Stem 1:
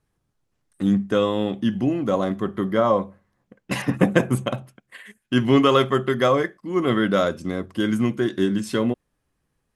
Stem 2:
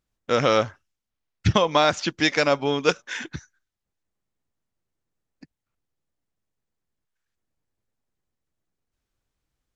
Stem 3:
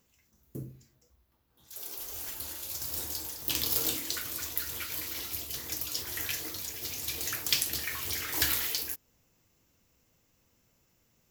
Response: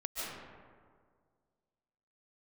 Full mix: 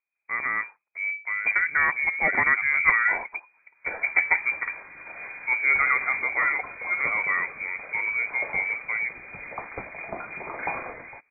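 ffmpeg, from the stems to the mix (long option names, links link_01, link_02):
-filter_complex "[0:a]adelay=150,volume=-12dB[link_01];[1:a]volume=-8dB[link_02];[2:a]adelay=2250,volume=1dB[link_03];[link_01][link_02][link_03]amix=inputs=3:normalize=0,dynaudnorm=framelen=800:gausssize=5:maxgain=9dB,lowpass=frequency=2100:width_type=q:width=0.5098,lowpass=frequency=2100:width_type=q:width=0.6013,lowpass=frequency=2100:width_type=q:width=0.9,lowpass=frequency=2100:width_type=q:width=2.563,afreqshift=-2500"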